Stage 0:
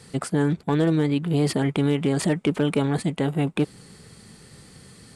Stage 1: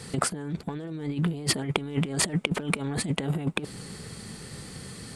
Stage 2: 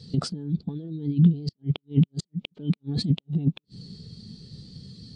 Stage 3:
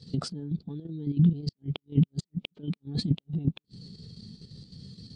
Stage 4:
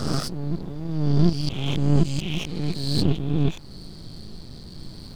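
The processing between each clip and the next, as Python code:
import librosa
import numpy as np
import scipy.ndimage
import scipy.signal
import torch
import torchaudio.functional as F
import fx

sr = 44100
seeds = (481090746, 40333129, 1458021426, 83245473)

y1 = fx.over_compress(x, sr, threshold_db=-27.0, ratio=-0.5)
y2 = fx.curve_eq(y1, sr, hz=(210.0, 1000.0, 2000.0, 3900.0, 5600.0, 9200.0), db=(0, -9, -10, 6, 3, -12))
y2 = fx.gate_flip(y2, sr, shuts_db=-15.0, range_db=-37)
y2 = fx.spectral_expand(y2, sr, expansion=1.5)
y3 = fx.level_steps(y2, sr, step_db=9)
y4 = fx.spec_swells(y3, sr, rise_s=1.39)
y4 = np.maximum(y4, 0.0)
y4 = fx.dmg_noise_colour(y4, sr, seeds[0], colour='brown', level_db=-48.0)
y4 = y4 * librosa.db_to_amplitude(6.0)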